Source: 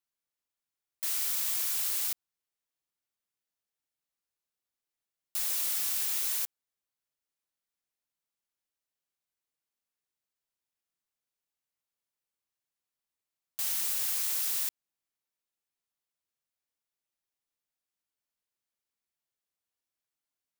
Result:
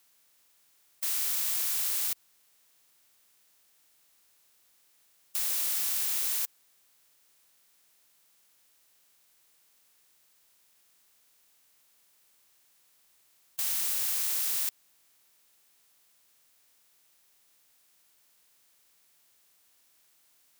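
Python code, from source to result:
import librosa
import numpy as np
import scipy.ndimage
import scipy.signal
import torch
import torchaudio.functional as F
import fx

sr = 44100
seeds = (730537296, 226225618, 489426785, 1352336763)

y = fx.bin_compress(x, sr, power=0.6)
y = F.gain(torch.from_numpy(y), -1.5).numpy()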